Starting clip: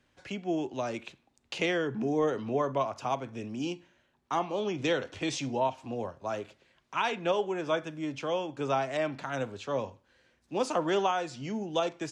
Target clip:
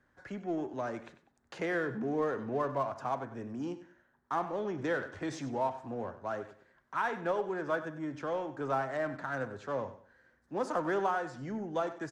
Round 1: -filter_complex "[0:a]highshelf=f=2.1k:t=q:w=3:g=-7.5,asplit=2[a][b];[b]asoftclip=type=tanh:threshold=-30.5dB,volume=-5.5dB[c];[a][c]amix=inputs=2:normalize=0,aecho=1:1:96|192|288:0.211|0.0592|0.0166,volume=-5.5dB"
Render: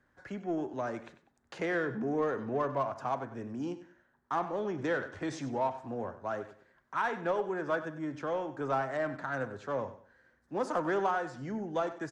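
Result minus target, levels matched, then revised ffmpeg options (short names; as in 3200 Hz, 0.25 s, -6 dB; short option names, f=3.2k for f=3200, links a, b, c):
soft clip: distortion -4 dB
-filter_complex "[0:a]highshelf=f=2.1k:t=q:w=3:g=-7.5,asplit=2[a][b];[b]asoftclip=type=tanh:threshold=-37.5dB,volume=-5.5dB[c];[a][c]amix=inputs=2:normalize=0,aecho=1:1:96|192|288:0.211|0.0592|0.0166,volume=-5.5dB"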